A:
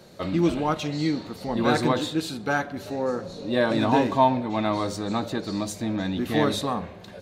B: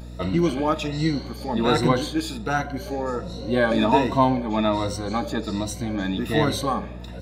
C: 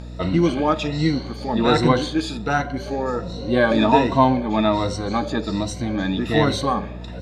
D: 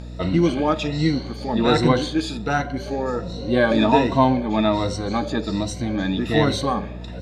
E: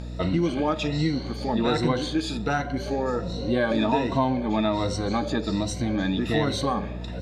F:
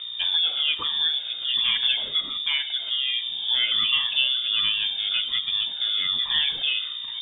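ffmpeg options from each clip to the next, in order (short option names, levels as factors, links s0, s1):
-af "afftfilt=real='re*pow(10,13/40*sin(2*PI*(2*log(max(b,1)*sr/1024/100)/log(2)-(1.3)*(pts-256)/sr)))':imag='im*pow(10,13/40*sin(2*PI*(2*log(max(b,1)*sr/1024/100)/log(2)-(1.3)*(pts-256)/sr)))':win_size=1024:overlap=0.75,aeval=exprs='val(0)+0.0158*(sin(2*PI*60*n/s)+sin(2*PI*2*60*n/s)/2+sin(2*PI*3*60*n/s)/3+sin(2*PI*4*60*n/s)/4+sin(2*PI*5*60*n/s)/5)':c=same"
-af "lowpass=6600,volume=1.41"
-af "equalizer=f=1100:w=1.5:g=-2.5"
-af "acompressor=threshold=0.0794:ratio=2.5"
-af "lowpass=f=3100:t=q:w=0.5098,lowpass=f=3100:t=q:w=0.6013,lowpass=f=3100:t=q:w=0.9,lowpass=f=3100:t=q:w=2.563,afreqshift=-3700"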